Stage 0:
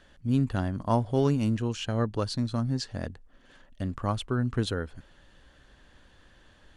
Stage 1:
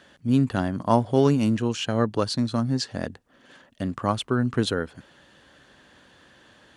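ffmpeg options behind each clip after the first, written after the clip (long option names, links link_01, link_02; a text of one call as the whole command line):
ffmpeg -i in.wav -af "highpass=140,volume=6dB" out.wav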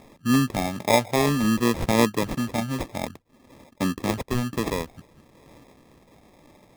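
ffmpeg -i in.wav -filter_complex "[0:a]acrossover=split=150|4100[link_01][link_02][link_03];[link_01]acompressor=threshold=-40dB:ratio=6[link_04];[link_02]aphaser=in_gain=1:out_gain=1:delay=1.7:decay=0.5:speed=0.54:type=sinusoidal[link_05];[link_04][link_05][link_03]amix=inputs=3:normalize=0,acrusher=samples=30:mix=1:aa=0.000001" out.wav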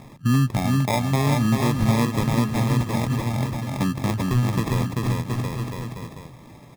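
ffmpeg -i in.wav -af "aecho=1:1:390|721.5|1003|1243|1446:0.631|0.398|0.251|0.158|0.1,acompressor=threshold=-30dB:ratio=2,equalizer=frequency=125:width_type=o:width=1:gain=12,equalizer=frequency=500:width_type=o:width=1:gain=-4,equalizer=frequency=1000:width_type=o:width=1:gain=3,volume=3.5dB" out.wav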